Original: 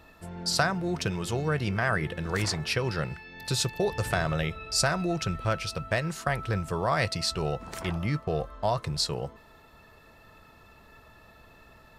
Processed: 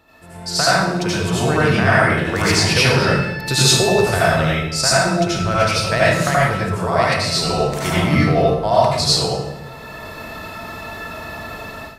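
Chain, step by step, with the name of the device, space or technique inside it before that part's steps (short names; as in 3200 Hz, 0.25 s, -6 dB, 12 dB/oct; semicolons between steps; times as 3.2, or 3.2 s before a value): far laptop microphone (reverb RT60 0.85 s, pre-delay 71 ms, DRR -8 dB; HPF 110 Hz 6 dB/oct; AGC gain up to 16.5 dB); gain -1 dB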